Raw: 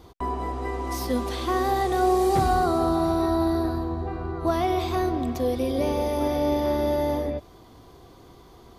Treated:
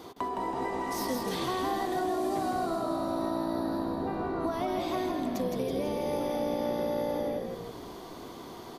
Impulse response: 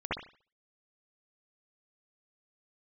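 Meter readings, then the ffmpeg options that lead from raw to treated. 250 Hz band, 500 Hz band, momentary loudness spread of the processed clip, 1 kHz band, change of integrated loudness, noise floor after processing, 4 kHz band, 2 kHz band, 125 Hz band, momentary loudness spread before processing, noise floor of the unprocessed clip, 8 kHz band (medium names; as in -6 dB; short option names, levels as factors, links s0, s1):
-6.0 dB, -6.5 dB, 10 LU, -6.5 dB, -6.5 dB, -45 dBFS, -4.0 dB, -5.5 dB, -11.5 dB, 9 LU, -50 dBFS, -4.0 dB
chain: -filter_complex "[0:a]highpass=210,acompressor=threshold=0.0141:ratio=6,asplit=8[s0][s1][s2][s3][s4][s5][s6][s7];[s1]adelay=163,afreqshift=-58,volume=0.631[s8];[s2]adelay=326,afreqshift=-116,volume=0.324[s9];[s3]adelay=489,afreqshift=-174,volume=0.164[s10];[s4]adelay=652,afreqshift=-232,volume=0.0841[s11];[s5]adelay=815,afreqshift=-290,volume=0.0427[s12];[s6]adelay=978,afreqshift=-348,volume=0.0219[s13];[s7]adelay=1141,afreqshift=-406,volume=0.0111[s14];[s0][s8][s9][s10][s11][s12][s13][s14]amix=inputs=8:normalize=0,asplit=2[s15][s16];[1:a]atrim=start_sample=2205[s17];[s16][s17]afir=irnorm=-1:irlink=0,volume=0.0631[s18];[s15][s18]amix=inputs=2:normalize=0,volume=1.88"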